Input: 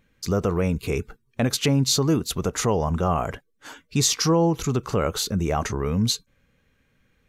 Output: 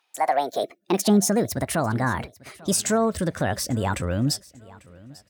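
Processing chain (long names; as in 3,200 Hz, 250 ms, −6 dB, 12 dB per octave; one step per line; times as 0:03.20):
gliding playback speed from 158% → 117%
high-pass filter sweep 1,100 Hz → 67 Hz, 0:00.05–0:01.72
repeating echo 845 ms, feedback 31%, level −22 dB
level −2 dB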